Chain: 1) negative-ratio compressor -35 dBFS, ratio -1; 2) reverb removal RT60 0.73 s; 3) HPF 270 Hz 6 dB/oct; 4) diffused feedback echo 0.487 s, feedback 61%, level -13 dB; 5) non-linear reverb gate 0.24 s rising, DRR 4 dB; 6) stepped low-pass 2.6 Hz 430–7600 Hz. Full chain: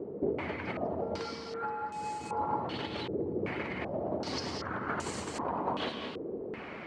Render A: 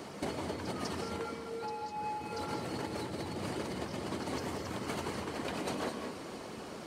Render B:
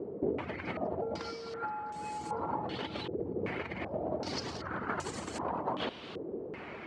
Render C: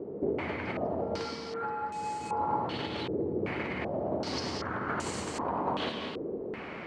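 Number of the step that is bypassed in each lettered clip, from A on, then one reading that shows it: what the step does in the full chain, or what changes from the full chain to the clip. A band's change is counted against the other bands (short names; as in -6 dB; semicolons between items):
6, 8 kHz band +4.0 dB; 5, crest factor change +1.5 dB; 2, loudness change +2.0 LU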